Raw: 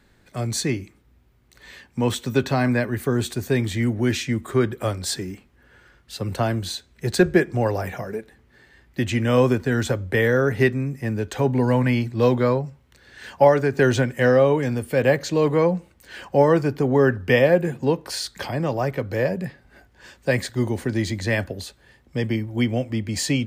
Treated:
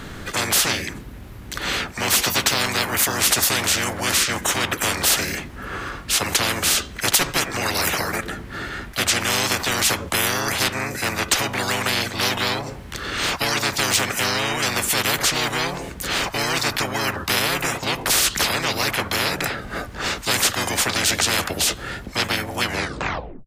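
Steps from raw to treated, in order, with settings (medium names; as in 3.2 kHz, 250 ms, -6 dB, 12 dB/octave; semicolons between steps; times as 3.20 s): tape stop on the ending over 0.84 s; harmony voices -4 st 0 dB; spectrum-flattening compressor 10:1; trim -1.5 dB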